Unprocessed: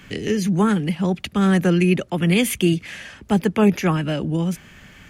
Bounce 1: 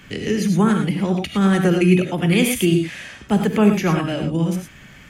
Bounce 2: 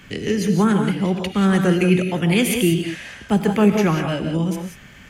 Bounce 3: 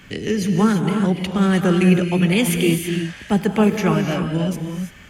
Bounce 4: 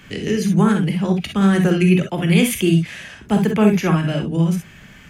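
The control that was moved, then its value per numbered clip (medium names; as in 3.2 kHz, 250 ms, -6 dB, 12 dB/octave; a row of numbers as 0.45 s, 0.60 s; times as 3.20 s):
gated-style reverb, gate: 130 ms, 210 ms, 360 ms, 80 ms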